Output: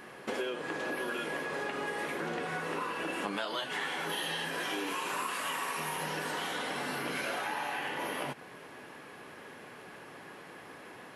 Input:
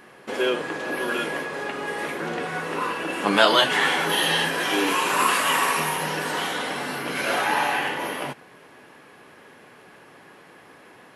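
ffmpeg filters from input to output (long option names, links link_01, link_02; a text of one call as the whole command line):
ffmpeg -i in.wav -af "acompressor=threshold=-32dB:ratio=12" out.wav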